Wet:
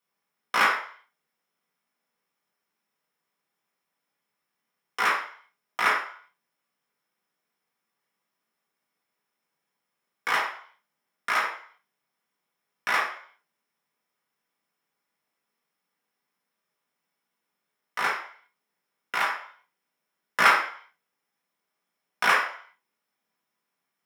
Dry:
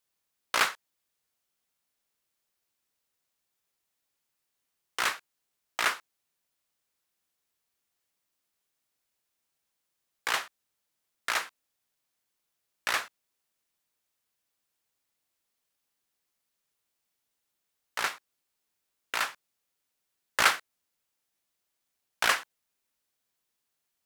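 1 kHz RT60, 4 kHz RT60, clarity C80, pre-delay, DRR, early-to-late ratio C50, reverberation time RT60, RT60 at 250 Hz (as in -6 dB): 0.55 s, 0.55 s, 9.5 dB, 3 ms, -4.5 dB, 5.0 dB, 0.50 s, 0.35 s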